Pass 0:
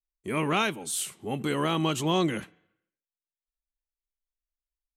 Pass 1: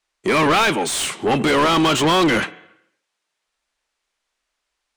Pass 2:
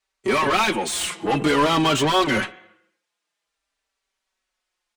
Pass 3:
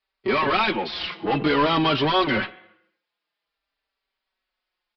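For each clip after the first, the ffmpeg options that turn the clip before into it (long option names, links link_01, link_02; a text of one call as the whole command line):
ffmpeg -i in.wav -filter_complex "[0:a]lowpass=frequency=10000:width=0.5412,lowpass=frequency=10000:width=1.3066,asplit=2[link_01][link_02];[link_02]highpass=frequency=720:poles=1,volume=29dB,asoftclip=type=tanh:threshold=-12.5dB[link_03];[link_01][link_03]amix=inputs=2:normalize=0,lowpass=frequency=2800:poles=1,volume=-6dB,volume=4dB" out.wav
ffmpeg -i in.wav -filter_complex "[0:a]asplit=2[link_01][link_02];[link_02]adelay=4.7,afreqshift=-0.5[link_03];[link_01][link_03]amix=inputs=2:normalize=1" out.wav
ffmpeg -i in.wav -af "aresample=11025,aresample=44100,volume=-1.5dB" out.wav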